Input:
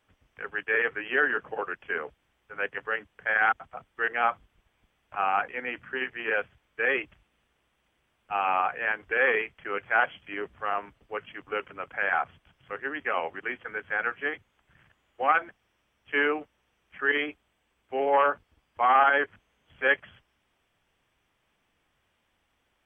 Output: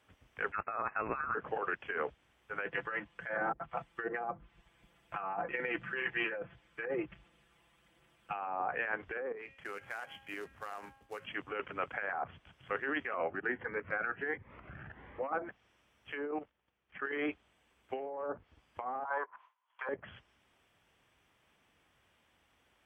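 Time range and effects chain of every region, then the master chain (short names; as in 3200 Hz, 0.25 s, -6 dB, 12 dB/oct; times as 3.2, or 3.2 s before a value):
0.52–1.35 HPF 700 Hz + inverted band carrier 3000 Hz
2.66–8.33 comb 5.9 ms, depth 74% + phaser 1.3 Hz, delay 1.2 ms, feedback 24%
9.32–11.25 resonator 270 Hz, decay 0.75 s, mix 50% + compressor 16:1, threshold -39 dBFS + short-mantissa float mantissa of 2-bit
13.14–15.33 LPF 2000 Hz 24 dB/oct + upward compressor, threshold -35 dBFS + cascading phaser rising 1.4 Hz
16.31–17.12 level quantiser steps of 12 dB + air absorption 150 m
19.05–19.89 resonant high-pass 1000 Hz, resonance Q 11 + air absorption 88 m + gate with hold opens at -44 dBFS, closes at -54 dBFS
whole clip: treble ducked by the level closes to 560 Hz, closed at -20 dBFS; HPF 47 Hz; negative-ratio compressor -34 dBFS, ratio -1; gain -2 dB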